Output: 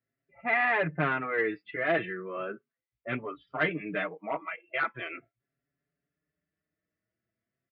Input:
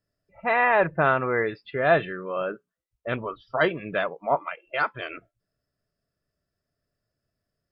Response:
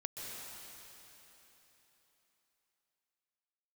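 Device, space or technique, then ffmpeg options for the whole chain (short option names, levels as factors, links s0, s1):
barber-pole flanger into a guitar amplifier: -filter_complex "[0:a]asplit=2[s0][s1];[s1]adelay=5.5,afreqshift=0.39[s2];[s0][s2]amix=inputs=2:normalize=1,asoftclip=type=tanh:threshold=0.141,highpass=98,equalizer=f=100:t=q:w=4:g=-6,equalizer=f=150:t=q:w=4:g=3,equalizer=f=300:t=q:w=4:g=6,equalizer=f=560:t=q:w=4:g=-4,equalizer=f=930:t=q:w=4:g=-5,equalizer=f=2100:t=q:w=4:g=9,lowpass=f=3400:w=0.5412,lowpass=f=3400:w=1.3066,volume=0.841"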